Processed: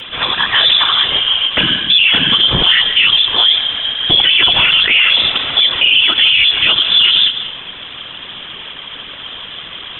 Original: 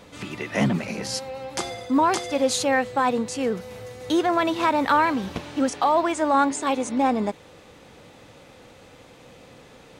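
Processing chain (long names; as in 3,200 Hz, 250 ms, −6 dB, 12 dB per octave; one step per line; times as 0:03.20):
high-pass filter 190 Hz 12 dB per octave
mains-hum notches 60/120/180/240/300/360/420 Hz
voice inversion scrambler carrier 3,700 Hz
in parallel at 0 dB: compressor whose output falls as the input rises −25 dBFS, ratio −1
on the sum: random phases in short frames
on a send at −16.5 dB: convolution reverb RT60 0.75 s, pre-delay 95 ms
on the sum: boost into a limiter +13.5 dB
every ending faded ahead of time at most 170 dB per second
level −1 dB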